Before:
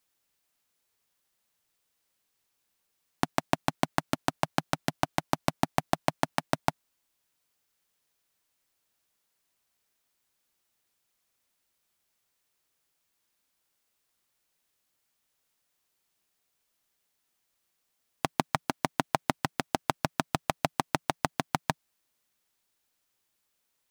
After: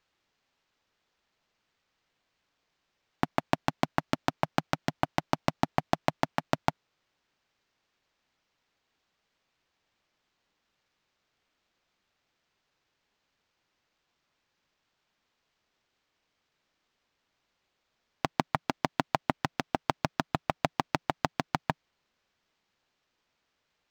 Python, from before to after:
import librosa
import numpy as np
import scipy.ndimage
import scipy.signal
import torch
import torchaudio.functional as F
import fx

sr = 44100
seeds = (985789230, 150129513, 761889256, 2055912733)

y = np.interp(np.arange(len(x)), np.arange(len(x))[::4], x[::4])